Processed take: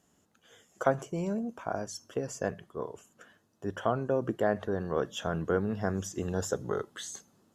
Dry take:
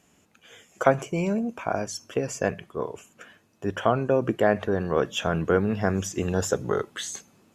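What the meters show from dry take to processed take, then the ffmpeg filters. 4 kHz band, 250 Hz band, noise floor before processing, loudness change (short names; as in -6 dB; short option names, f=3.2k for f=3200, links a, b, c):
-8.5 dB, -6.5 dB, -63 dBFS, -6.5 dB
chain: -af "equalizer=f=2.4k:t=o:w=0.39:g=-11.5,volume=-6.5dB"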